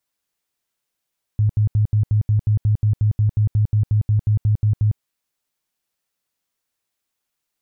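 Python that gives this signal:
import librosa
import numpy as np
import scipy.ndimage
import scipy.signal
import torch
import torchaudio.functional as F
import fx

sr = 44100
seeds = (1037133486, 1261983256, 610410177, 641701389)

y = fx.tone_burst(sr, hz=106.0, cycles=11, every_s=0.18, bursts=20, level_db=-13.0)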